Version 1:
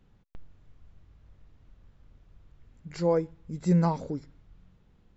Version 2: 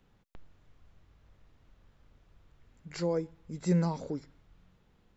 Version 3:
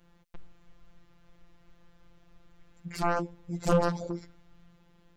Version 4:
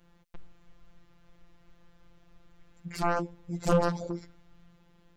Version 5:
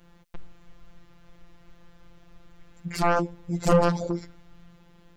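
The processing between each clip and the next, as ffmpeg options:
ffmpeg -i in.wav -filter_complex "[0:a]lowshelf=frequency=280:gain=-8,acrossover=split=370|3700[link_01][link_02][link_03];[link_02]alimiter=level_in=6dB:limit=-24dB:level=0:latency=1:release=200,volume=-6dB[link_04];[link_01][link_04][link_03]amix=inputs=3:normalize=0,volume=1.5dB" out.wav
ffmpeg -i in.wav -af "afftfilt=real='hypot(re,im)*cos(PI*b)':imag='0':win_size=1024:overlap=0.75,aeval=exprs='0.168*(cos(1*acos(clip(val(0)/0.168,-1,1)))-cos(1*PI/2))+0.0841*(cos(7*acos(clip(val(0)/0.168,-1,1)))-cos(7*PI/2))':channel_layout=same" out.wav
ffmpeg -i in.wav -af anull out.wav
ffmpeg -i in.wav -af "asoftclip=type=tanh:threshold=-15.5dB,volume=6.5dB" out.wav

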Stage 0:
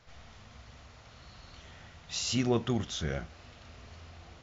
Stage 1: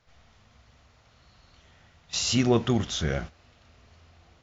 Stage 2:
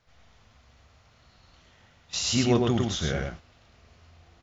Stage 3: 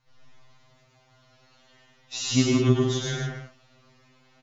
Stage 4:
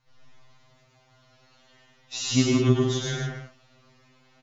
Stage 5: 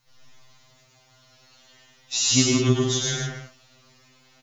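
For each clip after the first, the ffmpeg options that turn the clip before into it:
ffmpeg -i in.wav -af "agate=range=-12dB:threshold=-42dB:ratio=16:detection=peak,volume=6dB" out.wav
ffmpeg -i in.wav -af "aecho=1:1:106:0.668,volume=-1.5dB" out.wav
ffmpeg -i in.wav -af "aecho=1:1:93.29|157.4:0.501|0.562,afftfilt=real='re*2.45*eq(mod(b,6),0)':imag='im*2.45*eq(mod(b,6),0)':win_size=2048:overlap=0.75" out.wav
ffmpeg -i in.wav -af anull out.wav
ffmpeg -i in.wav -af "crystalizer=i=3:c=0" out.wav

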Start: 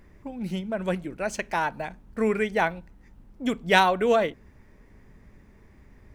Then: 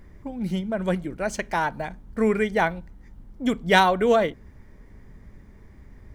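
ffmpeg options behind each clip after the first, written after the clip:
ffmpeg -i in.wav -af "lowshelf=frequency=170:gain=5.5,bandreject=frequency=2600:width=10,volume=1.5dB" out.wav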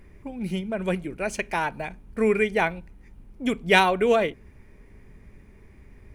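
ffmpeg -i in.wav -af "equalizer=frequency=400:width_type=o:width=0.33:gain=5,equalizer=frequency=2500:width_type=o:width=0.33:gain=12,equalizer=frequency=10000:width_type=o:width=0.33:gain=8,volume=-2.5dB" out.wav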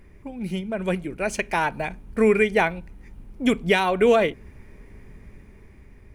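ffmpeg -i in.wav -af "alimiter=limit=-13dB:level=0:latency=1:release=298,dynaudnorm=framelen=530:gausssize=5:maxgain=5dB" out.wav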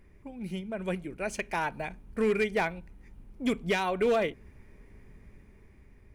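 ffmpeg -i in.wav -af "volume=12.5dB,asoftclip=hard,volume=-12.5dB,volume=-7.5dB" out.wav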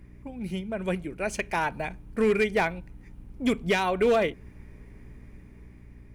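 ffmpeg -i in.wav -af "aeval=exprs='val(0)+0.00282*(sin(2*PI*60*n/s)+sin(2*PI*2*60*n/s)/2+sin(2*PI*3*60*n/s)/3+sin(2*PI*4*60*n/s)/4+sin(2*PI*5*60*n/s)/5)':channel_layout=same,volume=3.5dB" out.wav

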